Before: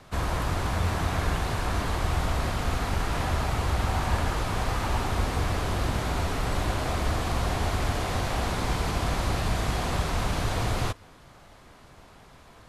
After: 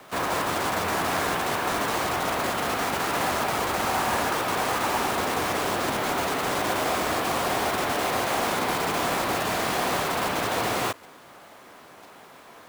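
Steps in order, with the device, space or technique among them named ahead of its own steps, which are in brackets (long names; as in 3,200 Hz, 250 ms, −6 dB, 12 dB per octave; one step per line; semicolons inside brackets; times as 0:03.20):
early digital voice recorder (band-pass filter 280–3,400 Hz; one scale factor per block 3 bits)
level +6 dB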